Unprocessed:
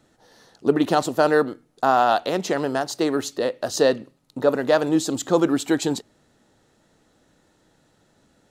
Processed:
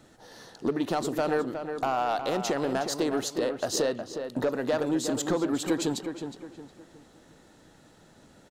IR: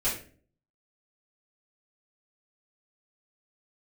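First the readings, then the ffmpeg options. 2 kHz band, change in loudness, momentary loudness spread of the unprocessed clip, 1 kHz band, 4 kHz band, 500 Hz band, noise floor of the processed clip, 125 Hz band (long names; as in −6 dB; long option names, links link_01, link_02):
−8.0 dB, −7.0 dB, 7 LU, −8.5 dB, −4.5 dB, −7.5 dB, −57 dBFS, −5.5 dB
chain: -filter_complex "[0:a]acompressor=threshold=-31dB:ratio=3,asoftclip=type=tanh:threshold=-22.5dB,asplit=2[link_01][link_02];[link_02]adelay=363,lowpass=frequency=2700:poles=1,volume=-7.5dB,asplit=2[link_03][link_04];[link_04]adelay=363,lowpass=frequency=2700:poles=1,volume=0.37,asplit=2[link_05][link_06];[link_06]adelay=363,lowpass=frequency=2700:poles=1,volume=0.37,asplit=2[link_07][link_08];[link_08]adelay=363,lowpass=frequency=2700:poles=1,volume=0.37[link_09];[link_03][link_05][link_07][link_09]amix=inputs=4:normalize=0[link_10];[link_01][link_10]amix=inputs=2:normalize=0,volume=4.5dB"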